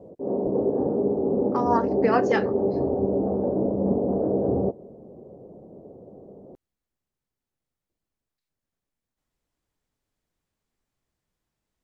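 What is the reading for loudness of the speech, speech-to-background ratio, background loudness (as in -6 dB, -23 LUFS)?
-26.0 LUFS, -1.5 dB, -24.5 LUFS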